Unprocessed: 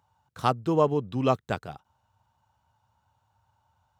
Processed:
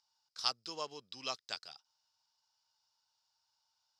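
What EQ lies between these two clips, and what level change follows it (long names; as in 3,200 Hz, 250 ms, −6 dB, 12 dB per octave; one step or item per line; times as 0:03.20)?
resonant band-pass 5,000 Hz, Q 8.6
+16.5 dB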